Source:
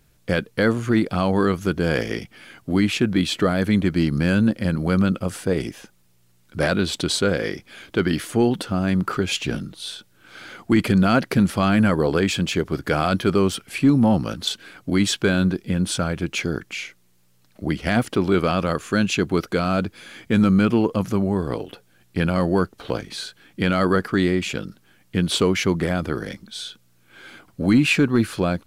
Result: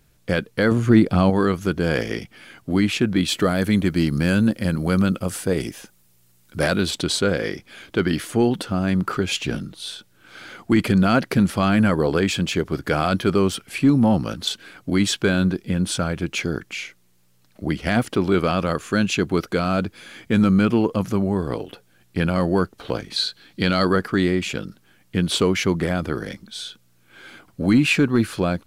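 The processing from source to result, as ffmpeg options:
ffmpeg -i in.wav -filter_complex "[0:a]asettb=1/sr,asplit=3[link_01][link_02][link_03];[link_01]atrim=end=0.714[link_04];[link_02]atrim=start=0.71:end=1.3,asetpts=PTS-STARTPTS,afade=type=in:duration=0.004:curve=qsin,afade=type=out:start_time=0.586:duration=0.004:curve=qsin,lowshelf=frequency=440:gain=7[link_05];[link_03]atrim=start=1.296[link_06];[link_04][link_05]acrossfade=duration=0.004:curve1=hsin:curve2=qsin[link_07];[link_07][link_06]acrossfade=duration=0.004:curve1=qsin:curve2=hsin,asettb=1/sr,asplit=3[link_08][link_09][link_10];[link_08]atrim=end=3.284[link_11];[link_09]atrim=start=3.28:end=6.91,asetpts=PTS-STARTPTS,afade=type=in:duration=0.004:curve=qsin,afade=type=out:start_time=3.626:duration=0.004:curve=qsin,highshelf=frequency=7200:gain=9[link_12];[link_10]atrim=start=6.906[link_13];[link_11][link_12]acrossfade=duration=0.004:curve1=hsin:curve2=qsin[link_14];[link_14][link_13]acrossfade=duration=0.004:curve1=qsin:curve2=hsin,asettb=1/sr,asplit=3[link_15][link_16][link_17];[link_15]atrim=end=23.164[link_18];[link_16]atrim=start=23.16:end=23.89,asetpts=PTS-STARTPTS,afade=type=in:duration=0.004:curve=qsin,afade=type=out:start_time=0.726:duration=0.004:curve=qsin,equalizer=frequency=4200:width=2.8:gain=12[link_19];[link_17]atrim=start=23.886[link_20];[link_18][link_19]acrossfade=duration=0.004:curve1=hsin:curve2=qsin[link_21];[link_21][link_20]acrossfade=duration=0.004:curve1=qsin:curve2=hsin" out.wav

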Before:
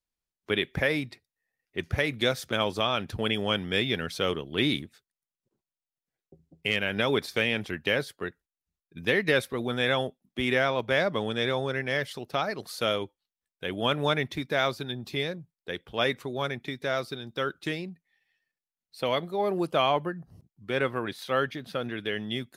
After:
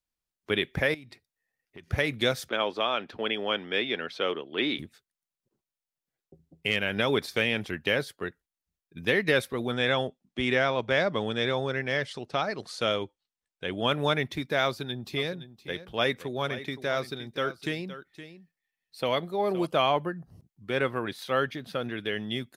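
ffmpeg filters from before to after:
ffmpeg -i in.wav -filter_complex "[0:a]asettb=1/sr,asplit=3[link_01][link_02][link_03];[link_01]atrim=end=0.944[link_04];[link_02]atrim=start=0.94:end=1.88,asetpts=PTS-STARTPTS,afade=type=in:duration=0.004:curve=qsin,afade=type=out:start_time=0.936:duration=0.004:curve=qsin,acompressor=threshold=-42dB:ratio=10:attack=3.2:release=140:knee=1:detection=peak[link_05];[link_03]atrim=start=1.876[link_06];[link_04][link_05]acrossfade=duration=0.004:curve1=hsin:curve2=qsin[link_07];[link_07][link_06]acrossfade=duration=0.004:curve1=qsin:curve2=hsin,asettb=1/sr,asplit=3[link_08][link_09][link_10];[link_08]atrim=end=2.494[link_11];[link_09]atrim=start=2.49:end=4.79,asetpts=PTS-STARTPTS,afade=type=in:duration=0.004:curve=qsin,afade=type=out:start_time=2.296:duration=0.004:curve=qsin,acrossover=split=240 4500:gain=0.0794 1 0.1[link_12][link_13][link_14];[link_12][link_13][link_14]amix=inputs=3:normalize=0[link_15];[link_10]atrim=start=4.786[link_16];[link_11][link_15]acrossfade=duration=0.004:curve1=hsin:curve2=qsin[link_17];[link_17][link_16]acrossfade=duration=0.004:curve1=qsin:curve2=hsin,asettb=1/sr,asplit=3[link_18][link_19][link_20];[link_18]atrim=end=9.724[link_21];[link_19]atrim=start=9.72:end=13.87,asetpts=PTS-STARTPTS,afade=type=in:duration=0.004:curve=qsin,afade=type=out:start_time=4.146:duration=0.004:curve=qsin,lowpass=frequency=8700:width=0.5412,lowpass=frequency=8700:width=1.3066[link_22];[link_20]atrim=start=13.866[link_23];[link_21][link_22]acrossfade=duration=0.004:curve1=hsin:curve2=qsin[link_24];[link_24][link_23]acrossfade=duration=0.004:curve1=qsin:curve2=hsin,asplit=3[link_25][link_26][link_27];[link_25]afade=type=out:start_time=15.17:duration=0.02[link_28];[link_26]aecho=1:1:517:0.211,afade=type=in:start_time=15.17:duration=0.02,afade=type=out:start_time=19.65:duration=0.02[link_29];[link_27]afade=type=in:start_time=19.65:duration=0.02[link_30];[link_28][link_29][link_30]amix=inputs=3:normalize=0" out.wav

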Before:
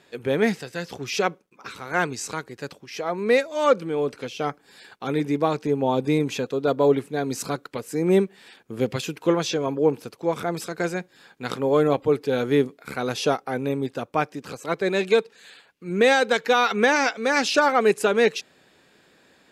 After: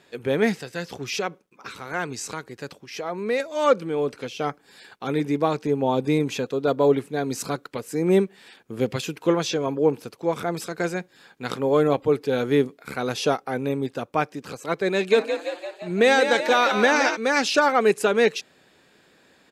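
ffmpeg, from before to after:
ffmpeg -i in.wav -filter_complex "[0:a]asettb=1/sr,asplit=3[link_01][link_02][link_03];[link_01]atrim=end=1.164[link_04];[link_02]atrim=start=1.16:end=3.4,asetpts=PTS-STARTPTS,afade=type=in:duration=0.004:curve=qsin,afade=type=out:start_time=2.236:duration=0.004:curve=qsin,acompressor=threshold=-29dB:ratio=1.5:attack=3.2:release=140:knee=1:detection=peak[link_05];[link_03]atrim=start=3.396[link_06];[link_04][link_05]acrossfade=duration=0.004:curve1=hsin:curve2=qsin[link_07];[link_07][link_06]acrossfade=duration=0.004:curve1=qsin:curve2=hsin,asplit=3[link_08][link_09][link_10];[link_08]afade=type=out:start_time=15.11:duration=0.02[link_11];[link_09]asplit=9[link_12][link_13][link_14][link_15][link_16][link_17][link_18][link_19][link_20];[link_13]adelay=171,afreqshift=44,volume=-8dB[link_21];[link_14]adelay=342,afreqshift=88,volume=-12.3dB[link_22];[link_15]adelay=513,afreqshift=132,volume=-16.6dB[link_23];[link_16]adelay=684,afreqshift=176,volume=-20.9dB[link_24];[link_17]adelay=855,afreqshift=220,volume=-25.2dB[link_25];[link_18]adelay=1026,afreqshift=264,volume=-29.5dB[link_26];[link_19]adelay=1197,afreqshift=308,volume=-33.8dB[link_27];[link_20]adelay=1368,afreqshift=352,volume=-38.1dB[link_28];[link_12][link_21][link_22][link_23][link_24][link_25][link_26][link_27][link_28]amix=inputs=9:normalize=0,afade=type=in:start_time=15.11:duration=0.02,afade=type=out:start_time=17.15:duration=0.02[link_29];[link_10]afade=type=in:start_time=17.15:duration=0.02[link_30];[link_11][link_29][link_30]amix=inputs=3:normalize=0" out.wav

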